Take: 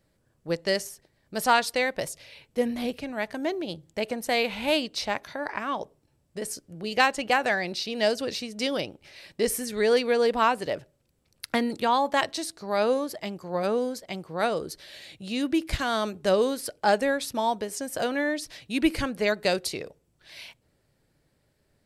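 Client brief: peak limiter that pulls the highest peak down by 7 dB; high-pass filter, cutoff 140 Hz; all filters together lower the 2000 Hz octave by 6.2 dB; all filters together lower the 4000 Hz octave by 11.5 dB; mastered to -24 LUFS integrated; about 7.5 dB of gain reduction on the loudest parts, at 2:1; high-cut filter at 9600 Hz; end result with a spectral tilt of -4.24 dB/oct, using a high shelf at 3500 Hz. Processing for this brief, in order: HPF 140 Hz; LPF 9600 Hz; bell 2000 Hz -4 dB; high shelf 3500 Hz -7 dB; bell 4000 Hz -9 dB; compressor 2:1, threshold -32 dBFS; gain +11.5 dB; limiter -12 dBFS

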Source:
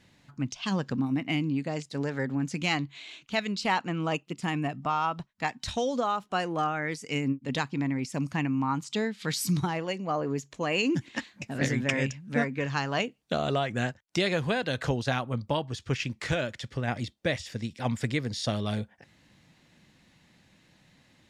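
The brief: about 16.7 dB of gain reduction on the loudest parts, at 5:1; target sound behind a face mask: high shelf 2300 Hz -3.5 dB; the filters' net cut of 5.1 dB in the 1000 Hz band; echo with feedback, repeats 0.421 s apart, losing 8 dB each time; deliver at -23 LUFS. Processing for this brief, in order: bell 1000 Hz -6.5 dB; compressor 5:1, threshold -43 dBFS; high shelf 2300 Hz -3.5 dB; feedback echo 0.421 s, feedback 40%, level -8 dB; gain +22 dB

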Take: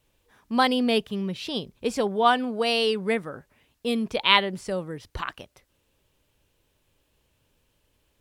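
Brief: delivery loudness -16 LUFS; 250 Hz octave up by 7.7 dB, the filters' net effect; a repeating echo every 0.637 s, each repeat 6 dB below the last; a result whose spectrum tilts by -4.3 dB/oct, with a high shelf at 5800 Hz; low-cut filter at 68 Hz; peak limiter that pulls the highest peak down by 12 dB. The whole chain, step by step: HPF 68 Hz; bell 250 Hz +8.5 dB; high shelf 5800 Hz -5 dB; limiter -14.5 dBFS; feedback echo 0.637 s, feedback 50%, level -6 dB; gain +8 dB

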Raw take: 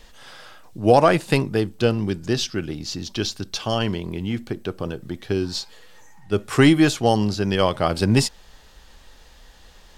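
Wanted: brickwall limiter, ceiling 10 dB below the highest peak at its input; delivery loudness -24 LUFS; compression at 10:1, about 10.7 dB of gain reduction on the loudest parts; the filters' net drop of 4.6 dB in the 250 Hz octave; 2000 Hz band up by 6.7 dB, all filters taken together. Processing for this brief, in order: bell 250 Hz -6.5 dB; bell 2000 Hz +8.5 dB; compressor 10:1, threshold -20 dBFS; gain +5 dB; limiter -10.5 dBFS

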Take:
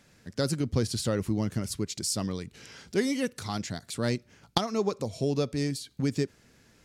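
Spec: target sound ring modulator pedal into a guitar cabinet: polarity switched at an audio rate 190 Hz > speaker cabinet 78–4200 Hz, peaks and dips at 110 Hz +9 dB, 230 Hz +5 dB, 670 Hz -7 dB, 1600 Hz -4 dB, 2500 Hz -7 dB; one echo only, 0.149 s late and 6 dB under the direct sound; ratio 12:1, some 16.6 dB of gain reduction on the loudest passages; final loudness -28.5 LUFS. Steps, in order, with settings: compressor 12:1, threshold -38 dBFS; echo 0.149 s -6 dB; polarity switched at an audio rate 190 Hz; speaker cabinet 78–4200 Hz, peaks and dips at 110 Hz +9 dB, 230 Hz +5 dB, 670 Hz -7 dB, 1600 Hz -4 dB, 2500 Hz -7 dB; gain +15.5 dB

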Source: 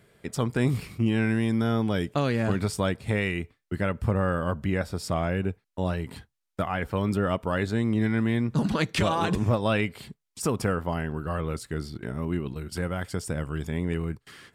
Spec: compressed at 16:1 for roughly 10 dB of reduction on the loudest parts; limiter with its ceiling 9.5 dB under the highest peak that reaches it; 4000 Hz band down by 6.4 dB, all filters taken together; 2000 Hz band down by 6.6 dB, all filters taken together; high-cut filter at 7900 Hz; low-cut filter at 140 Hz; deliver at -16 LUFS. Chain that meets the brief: HPF 140 Hz; LPF 7900 Hz; bell 2000 Hz -7.5 dB; bell 4000 Hz -5.5 dB; compressor 16:1, threshold -31 dBFS; gain +24 dB; limiter -4.5 dBFS

